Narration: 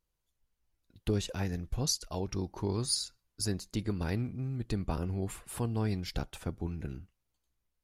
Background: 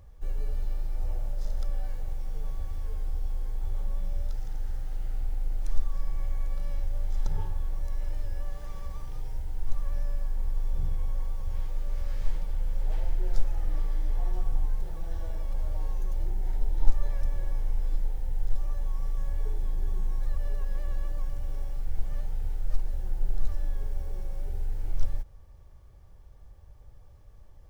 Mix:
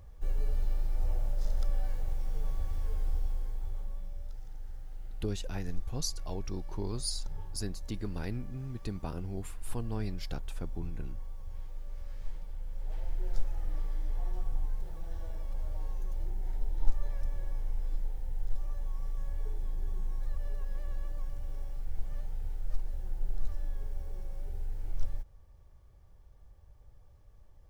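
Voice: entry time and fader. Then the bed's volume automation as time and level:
4.15 s, −4.5 dB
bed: 0:03.14 0 dB
0:04.14 −10.5 dB
0:12.67 −10.5 dB
0:13.22 −5.5 dB

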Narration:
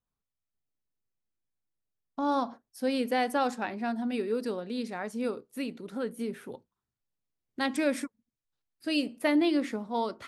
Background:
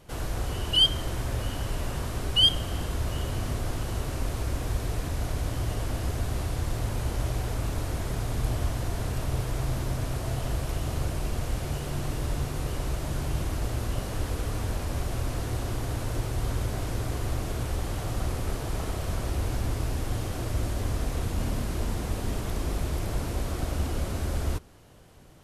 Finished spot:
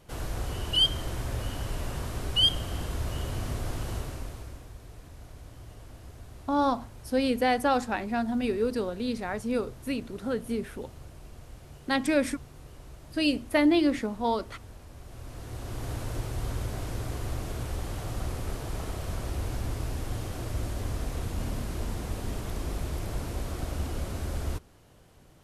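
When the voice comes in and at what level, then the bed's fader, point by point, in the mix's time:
4.30 s, +3.0 dB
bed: 0:03.94 −2.5 dB
0:04.72 −17 dB
0:14.97 −17 dB
0:15.88 −3.5 dB

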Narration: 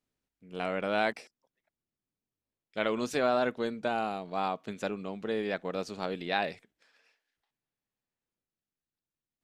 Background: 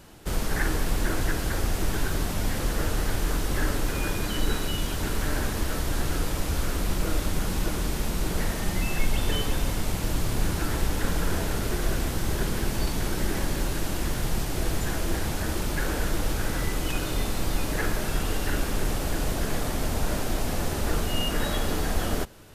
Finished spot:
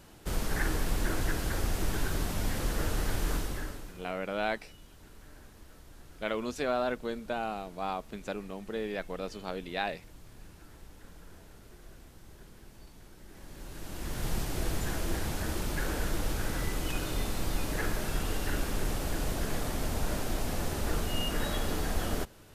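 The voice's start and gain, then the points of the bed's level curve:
3.45 s, −3.0 dB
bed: 0:03.36 −4.5 dB
0:04.12 −25.5 dB
0:13.24 −25.5 dB
0:14.28 −5 dB

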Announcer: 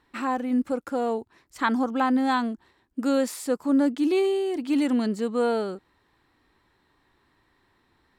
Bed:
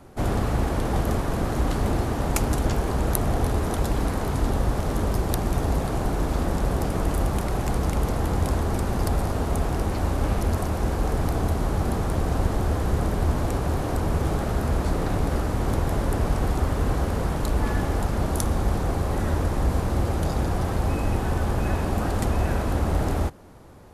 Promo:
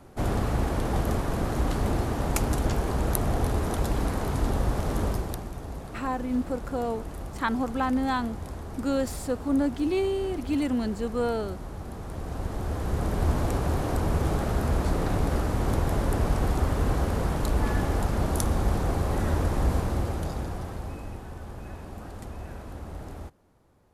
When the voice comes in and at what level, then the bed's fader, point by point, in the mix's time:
5.80 s, −3.5 dB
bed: 0:05.07 −2.5 dB
0:05.53 −13.5 dB
0:11.90 −13.5 dB
0:13.28 −1.5 dB
0:19.72 −1.5 dB
0:21.28 −15.5 dB

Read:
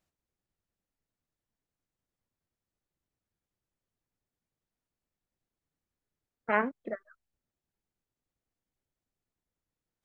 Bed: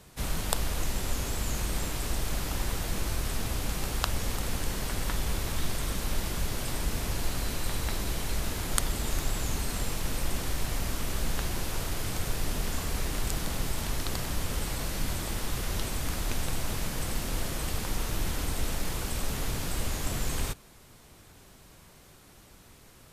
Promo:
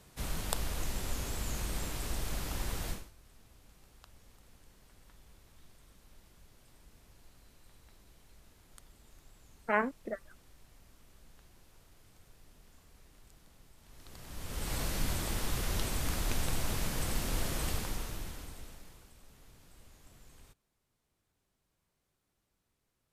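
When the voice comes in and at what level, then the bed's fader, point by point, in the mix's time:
3.20 s, −2.0 dB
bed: 0:02.91 −5.5 dB
0:03.12 −29 dB
0:13.79 −29 dB
0:14.75 −2 dB
0:17.70 −2 dB
0:19.16 −27 dB

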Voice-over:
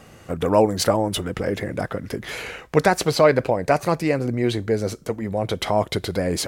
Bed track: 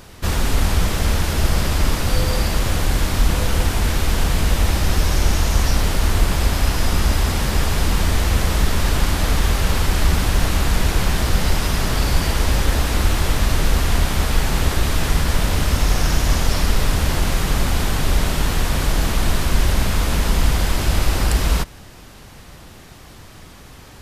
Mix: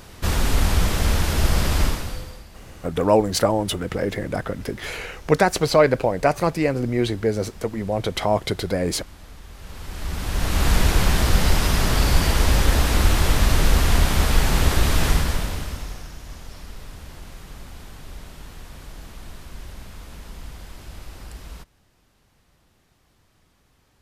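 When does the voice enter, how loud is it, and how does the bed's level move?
2.55 s, 0.0 dB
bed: 0:01.83 −1.5 dB
0:02.46 −25 dB
0:09.47 −25 dB
0:10.68 0 dB
0:15.09 0 dB
0:16.13 −21 dB

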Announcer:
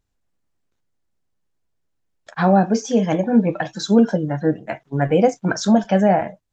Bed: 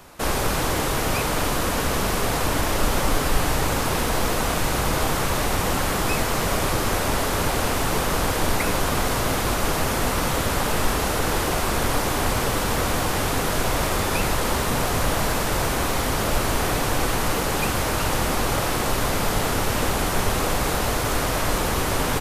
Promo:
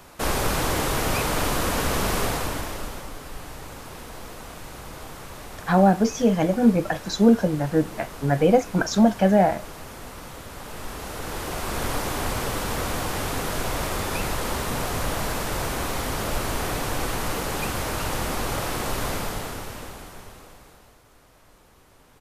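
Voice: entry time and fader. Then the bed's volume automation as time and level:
3.30 s, −2.0 dB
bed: 0:02.22 −1 dB
0:03.12 −16.5 dB
0:10.49 −16.5 dB
0:11.85 −4.5 dB
0:19.12 −4.5 dB
0:21.04 −32.5 dB

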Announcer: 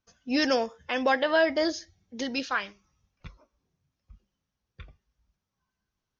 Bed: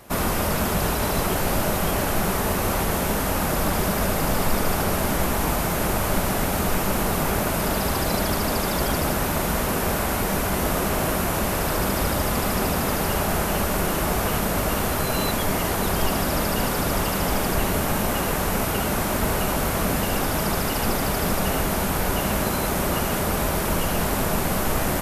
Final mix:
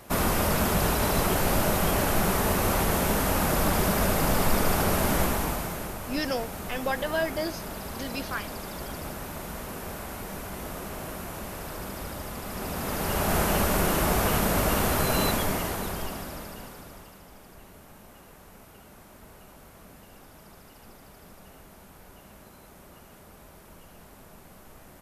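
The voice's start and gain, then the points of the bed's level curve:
5.80 s, −5.0 dB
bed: 0:05.21 −1.5 dB
0:05.97 −13.5 dB
0:12.43 −13.5 dB
0:13.37 −1 dB
0:15.26 −1 dB
0:17.26 −27 dB

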